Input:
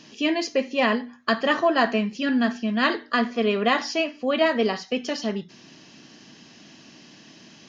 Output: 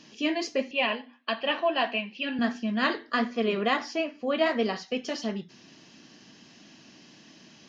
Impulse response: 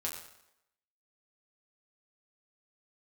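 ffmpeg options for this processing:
-filter_complex "[0:a]asettb=1/sr,asplit=3[link_01][link_02][link_03];[link_01]atrim=end=0.714[link_04];[link_02]atrim=start=0.71:end=2.39,asetpts=PTS-STARTPTS,afade=type=in:duration=0.004:curve=qsin,afade=type=out:start_time=1.676:duration=0.004:curve=qsin,highpass=350,equalizer=frequency=420:width_type=q:width=4:gain=-7,equalizer=frequency=1300:width_type=q:width=4:gain=-9,equalizer=frequency=1900:width_type=q:width=4:gain=-4,equalizer=frequency=2700:width_type=q:width=4:gain=10,lowpass=frequency=4000:width=0.5412,lowpass=frequency=4000:width=1.3066[link_05];[link_03]atrim=start=2.386[link_06];[link_04][link_05]acrossfade=duration=0.004:curve1=hsin:curve2=qsin[link_07];[link_07][link_06]acrossfade=duration=0.004:curve1=qsin:curve2=hsin,flanger=delay=3.5:depth=7.1:regen=-68:speed=1.5:shape=sinusoidal,asplit=3[link_08][link_09][link_10];[link_08]afade=type=out:start_time=3.76:duration=0.02[link_11];[link_09]adynamicequalizer=threshold=0.00708:dfrequency=2500:dqfactor=0.7:tfrequency=2500:tqfactor=0.7:attack=5:release=100:ratio=0.375:range=3:mode=cutabove:tftype=highshelf,afade=type=in:start_time=3.76:duration=0.02,afade=type=out:start_time=4.38:duration=0.02[link_12];[link_10]afade=type=in:start_time=4.38:duration=0.02[link_13];[link_11][link_12][link_13]amix=inputs=3:normalize=0"

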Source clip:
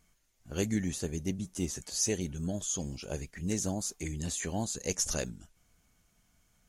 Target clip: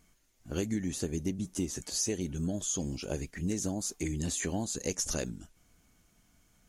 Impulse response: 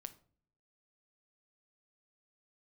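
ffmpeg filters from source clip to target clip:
-af "equalizer=frequency=300:width_type=o:width=0.81:gain=5.5,acompressor=threshold=-31dB:ratio=6,volume=2.5dB"

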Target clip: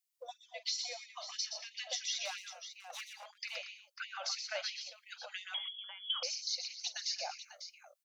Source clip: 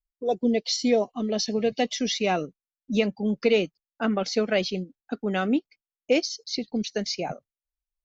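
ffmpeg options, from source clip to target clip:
ffmpeg -i in.wav -filter_complex "[0:a]highshelf=frequency=2800:gain=11,acompressor=threshold=-34dB:ratio=16,asettb=1/sr,asplit=3[link_01][link_02][link_03];[link_01]atrim=end=2.254[link_04];[link_02]atrim=start=2.25:end=3.26,asetpts=PTS-STARTPTS,afade=type=in:duration=0.004:curve=qsin,afade=type=out:start_time=1.006:duration=0.004:curve=qsin,aeval=exprs='0.0251*(abs(mod(val(0)/0.0251+3,4)-2)-1)':channel_layout=same[link_05];[link_03]atrim=start=3.256[link_06];[link_04][link_05]acrossfade=duration=0.004:curve1=hsin:curve2=qsin[link_07];[link_07][link_06]acrossfade=duration=0.004:curve1=qsin:curve2=hsin,aecho=1:1:44|123|129|201|232|547:0.178|0.473|0.141|0.112|0.168|0.282,asettb=1/sr,asplit=3[link_08][link_09][link_10];[link_08]atrim=end=5.544[link_11];[link_09]atrim=start=5.54:end=6.23,asetpts=PTS-STARTPTS,afade=type=in:duration=0.004:curve=qsin,afade=type=out:start_time=0.686:duration=0.004:curve=qsin,lowpass=frequency=3100:width_type=q:width=0.5098,lowpass=frequency=3100:width_type=q:width=0.6013,lowpass=frequency=3100:width_type=q:width=0.9,lowpass=frequency=3100:width_type=q:width=2.563,afreqshift=-3600[link_12];[link_10]atrim=start=6.226[link_13];[link_11][link_12]acrossfade=duration=0.004:curve1=hsin:curve2=qsin[link_14];[link_14][link_13]acrossfade=duration=0.004:curve1=qsin:curve2=hsin,afftfilt=real='re*gte(b*sr/1024,490*pow(1900/490,0.5+0.5*sin(2*PI*3*pts/sr)))':imag='im*gte(b*sr/1024,490*pow(1900/490,0.5+0.5*sin(2*PI*3*pts/sr)))':win_size=1024:overlap=0.75" out.wav

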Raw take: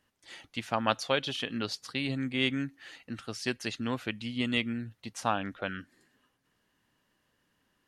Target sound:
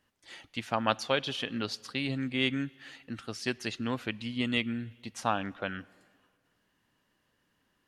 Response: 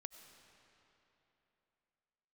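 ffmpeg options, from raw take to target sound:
-filter_complex "[0:a]asplit=2[link_01][link_02];[1:a]atrim=start_sample=2205,asetrate=79380,aresample=44100,lowpass=6400[link_03];[link_02][link_03]afir=irnorm=-1:irlink=0,volume=-3.5dB[link_04];[link_01][link_04]amix=inputs=2:normalize=0,volume=-1.5dB"

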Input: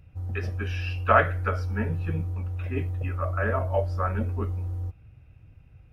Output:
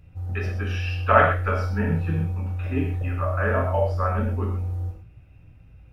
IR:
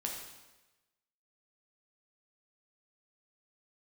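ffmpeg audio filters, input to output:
-filter_complex "[0:a]asettb=1/sr,asplit=3[link_01][link_02][link_03];[link_01]atrim=end=1.434[link_04];[link_02]atrim=start=1.43:end=3.77,asetpts=PTS-STARTPTS,afade=type=in:duration=0.004:curve=qsin,afade=type=out:start_time=2.336:duration=0.004:curve=qsin,asplit=2[link_05][link_06];[link_06]adelay=30,volume=-6.5dB[link_07];[link_05][link_07]amix=inputs=2:normalize=0,atrim=end_sample=103194[link_08];[link_03]atrim=start=3.766[link_09];[link_04][link_08]acrossfade=duration=0.004:curve1=hsin:curve2=qsin[link_10];[link_10][link_09]acrossfade=duration=0.004:curve1=qsin:curve2=hsin[link_11];[1:a]atrim=start_sample=2205,afade=type=out:start_time=0.19:duration=0.01,atrim=end_sample=8820[link_12];[link_11][link_12]afir=irnorm=-1:irlink=0,volume=2.5dB"

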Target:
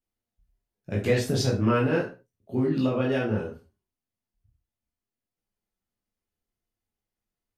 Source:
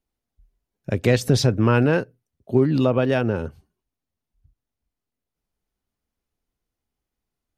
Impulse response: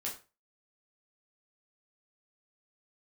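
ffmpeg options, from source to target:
-filter_complex "[1:a]atrim=start_sample=2205,afade=type=out:start_time=0.27:duration=0.01,atrim=end_sample=12348,asetrate=41454,aresample=44100[link_01];[0:a][link_01]afir=irnorm=-1:irlink=0,volume=-6dB"

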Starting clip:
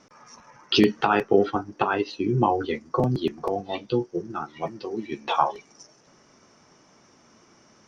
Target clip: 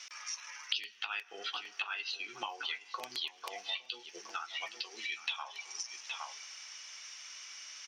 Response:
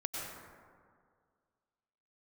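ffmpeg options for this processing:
-filter_complex "[0:a]highpass=frequency=2700:width_type=q:width=1.7,asplit=2[link_01][link_02];[link_02]adelay=816.3,volume=-15dB,highshelf=frequency=4000:gain=-18.4[link_03];[link_01][link_03]amix=inputs=2:normalize=0,asplit=2[link_04][link_05];[1:a]atrim=start_sample=2205,asetrate=52920,aresample=44100[link_06];[link_05][link_06]afir=irnorm=-1:irlink=0,volume=-24.5dB[link_07];[link_04][link_07]amix=inputs=2:normalize=0,acompressor=threshold=-48dB:ratio=6,volume=11.5dB"

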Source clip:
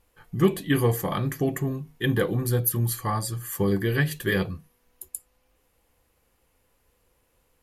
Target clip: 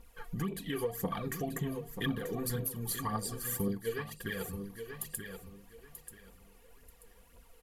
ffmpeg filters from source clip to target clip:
ffmpeg -i in.wav -filter_complex "[0:a]aecho=1:1:4.3:0.55,alimiter=limit=-17.5dB:level=0:latency=1:release=266,aphaser=in_gain=1:out_gain=1:delay=2.8:decay=0.62:speed=1.9:type=triangular,acompressor=threshold=-39dB:ratio=2.5,aecho=1:1:935|1870|2805:0.335|0.0804|0.0193,asettb=1/sr,asplit=3[link_01][link_02][link_03];[link_01]atrim=end=3.684[link_04];[link_02]atrim=start=3.68:end=4.44,asetpts=PTS-STARTPTS,afade=type=in:duration=0.004:curve=qsin,afade=type=out:start_time=0.756:duration=0.004:curve=qsin,agate=range=-33dB:threshold=-33dB:ratio=3:detection=peak[link_05];[link_03]atrim=start=4.436[link_06];[link_04][link_05]acrossfade=duration=0.004:curve1=hsin:curve2=qsin[link_07];[link_07][link_06]acrossfade=duration=0.004:curve1=qsin:curve2=hsin,volume=1.5dB" out.wav

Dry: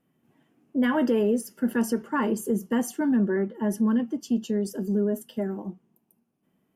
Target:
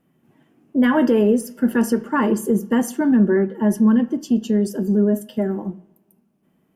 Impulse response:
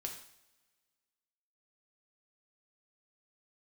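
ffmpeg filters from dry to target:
-filter_complex "[0:a]asplit=2[link_01][link_02];[1:a]atrim=start_sample=2205,lowpass=3400,lowshelf=frequency=210:gain=6.5[link_03];[link_02][link_03]afir=irnorm=-1:irlink=0,volume=-7.5dB[link_04];[link_01][link_04]amix=inputs=2:normalize=0,volume=4.5dB"

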